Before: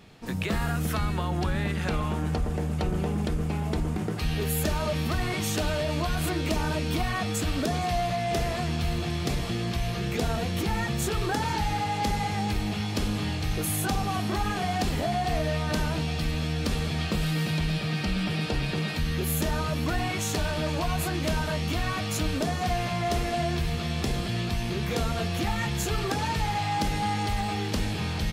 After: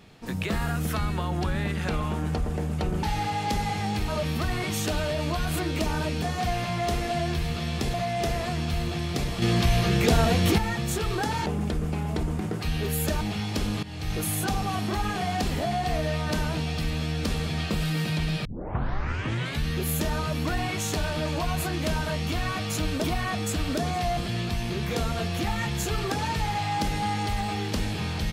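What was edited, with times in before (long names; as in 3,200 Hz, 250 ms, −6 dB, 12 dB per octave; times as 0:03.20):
0:03.03–0:04.78: swap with 0:11.57–0:12.62
0:06.92–0:08.05: swap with 0:22.45–0:24.17
0:09.53–0:10.69: clip gain +7 dB
0:13.24–0:13.56: fade in linear, from −15.5 dB
0:17.86: tape start 1.21 s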